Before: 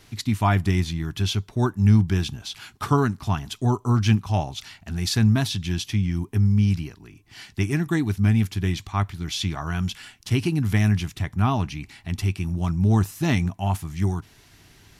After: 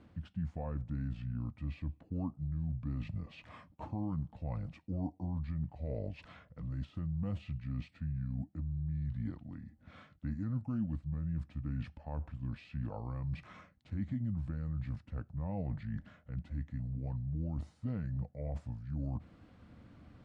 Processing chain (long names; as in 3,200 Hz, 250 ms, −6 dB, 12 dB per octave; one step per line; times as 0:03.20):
de-essing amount 65%
brickwall limiter −16 dBFS, peak gain reduction 9 dB
reversed playback
downward compressor 5 to 1, threshold −34 dBFS, peak gain reduction 13.5 dB
reversed playback
resonant band-pass 280 Hz, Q 0.69
wrong playback speed 45 rpm record played at 33 rpm
level +2 dB